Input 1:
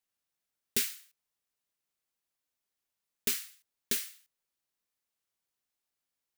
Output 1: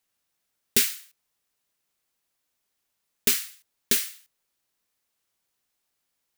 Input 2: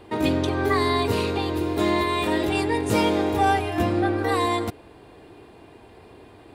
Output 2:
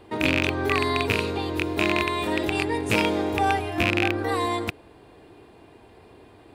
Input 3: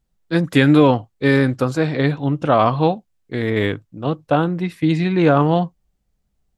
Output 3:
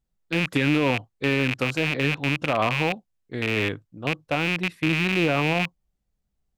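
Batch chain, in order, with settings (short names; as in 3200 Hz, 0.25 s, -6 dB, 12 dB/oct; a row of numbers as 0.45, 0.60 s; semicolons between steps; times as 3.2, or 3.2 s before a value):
rattling part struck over -24 dBFS, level -6 dBFS; maximiser +2.5 dB; match loudness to -24 LUFS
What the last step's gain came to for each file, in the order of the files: +6.5, -5.0, -10.0 dB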